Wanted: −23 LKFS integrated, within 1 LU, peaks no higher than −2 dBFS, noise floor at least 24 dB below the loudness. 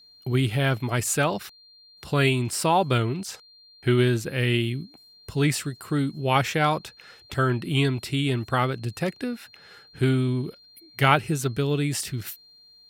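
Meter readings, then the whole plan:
interfering tone 4,200 Hz; level of the tone −51 dBFS; integrated loudness −25.0 LKFS; sample peak −3.0 dBFS; target loudness −23.0 LKFS
→ notch filter 4,200 Hz, Q 30
level +2 dB
brickwall limiter −2 dBFS

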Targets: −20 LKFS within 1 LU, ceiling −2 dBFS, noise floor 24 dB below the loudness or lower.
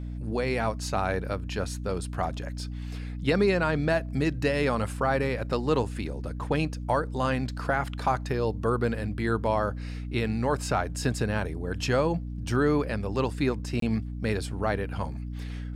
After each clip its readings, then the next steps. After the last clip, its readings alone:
number of dropouts 1; longest dropout 23 ms; mains hum 60 Hz; hum harmonics up to 300 Hz; level of the hum −32 dBFS; integrated loudness −28.5 LKFS; sample peak −12.5 dBFS; target loudness −20.0 LKFS
→ repair the gap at 0:13.80, 23 ms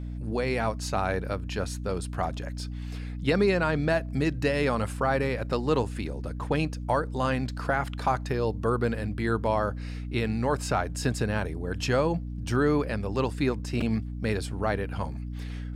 number of dropouts 0; mains hum 60 Hz; hum harmonics up to 300 Hz; level of the hum −32 dBFS
→ hum removal 60 Hz, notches 5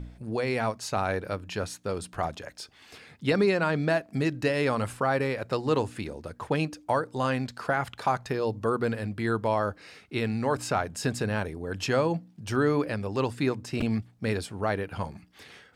mains hum none found; integrated loudness −29.0 LKFS; sample peak −12.5 dBFS; target loudness −20.0 LKFS
→ level +9 dB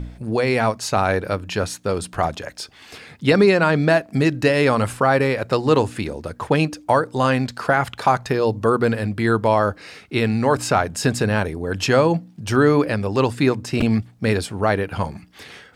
integrated loudness −20.0 LKFS; sample peak −3.5 dBFS; background noise floor −48 dBFS

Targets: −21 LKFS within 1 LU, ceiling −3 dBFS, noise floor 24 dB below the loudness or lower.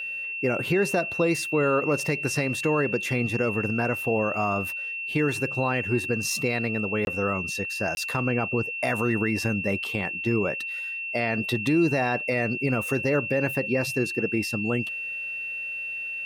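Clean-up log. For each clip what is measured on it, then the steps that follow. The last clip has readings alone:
number of dropouts 2; longest dropout 21 ms; interfering tone 2,700 Hz; level of the tone −30 dBFS; integrated loudness −25.5 LKFS; sample peak −13.0 dBFS; target loudness −21.0 LKFS
→ repair the gap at 0:07.05/0:07.95, 21 ms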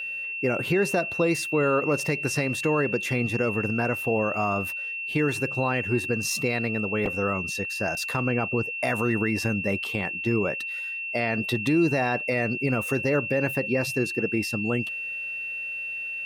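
number of dropouts 0; interfering tone 2,700 Hz; level of the tone −30 dBFS
→ notch filter 2,700 Hz, Q 30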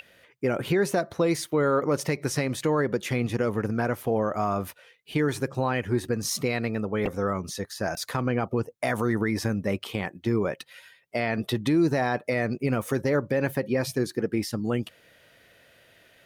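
interfering tone none found; integrated loudness −27.0 LKFS; sample peak −14.0 dBFS; target loudness −21.0 LKFS
→ level +6 dB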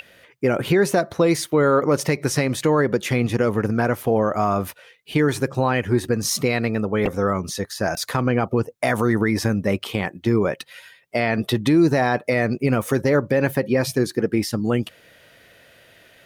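integrated loudness −21.0 LKFS; sample peak −8.0 dBFS; background noise floor −53 dBFS

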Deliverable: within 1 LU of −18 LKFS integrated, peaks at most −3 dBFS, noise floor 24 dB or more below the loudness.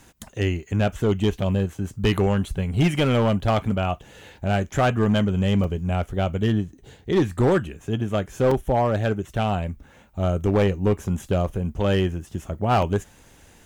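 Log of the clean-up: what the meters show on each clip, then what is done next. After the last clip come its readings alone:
share of clipped samples 1.4%; peaks flattened at −13.5 dBFS; number of dropouts 3; longest dropout 3.5 ms; integrated loudness −23.5 LKFS; sample peak −13.5 dBFS; target loudness −18.0 LKFS
→ clipped peaks rebuilt −13.5 dBFS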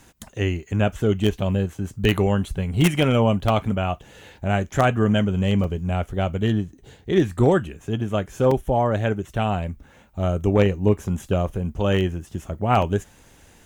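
share of clipped samples 0.0%; number of dropouts 3; longest dropout 3.5 ms
→ repair the gap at 0:05.64/0:08.51/0:12.82, 3.5 ms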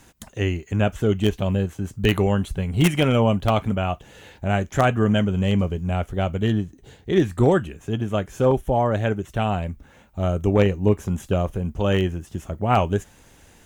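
number of dropouts 0; integrated loudness −22.5 LKFS; sample peak −4.5 dBFS; target loudness −18.0 LKFS
→ level +4.5 dB
brickwall limiter −3 dBFS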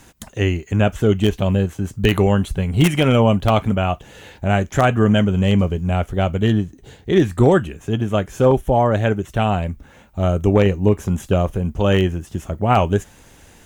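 integrated loudness −18.5 LKFS; sample peak −3.0 dBFS; background noise floor −48 dBFS

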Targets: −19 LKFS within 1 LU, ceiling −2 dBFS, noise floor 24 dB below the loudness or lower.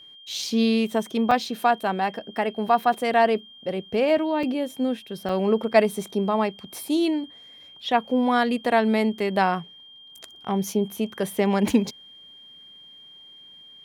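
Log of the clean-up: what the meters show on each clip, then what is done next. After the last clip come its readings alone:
number of dropouts 3; longest dropout 3.9 ms; interfering tone 3,200 Hz; level of the tone −45 dBFS; integrated loudness −24.0 LKFS; sample peak −5.5 dBFS; target loudness −19.0 LKFS
→ repair the gap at 0:01.31/0:04.43/0:05.29, 3.9 ms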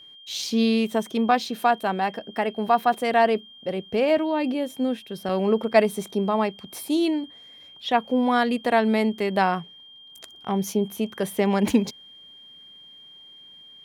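number of dropouts 0; interfering tone 3,200 Hz; level of the tone −45 dBFS
→ notch filter 3,200 Hz, Q 30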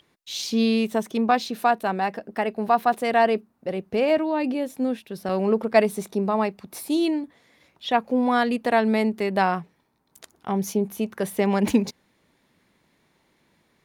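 interfering tone none found; integrated loudness −24.0 LKFS; sample peak −5.5 dBFS; target loudness −19.0 LKFS
→ level +5 dB
brickwall limiter −2 dBFS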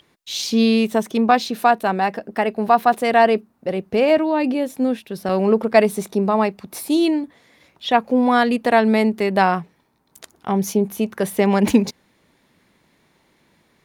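integrated loudness −19.0 LKFS; sample peak −2.0 dBFS; background noise floor −62 dBFS

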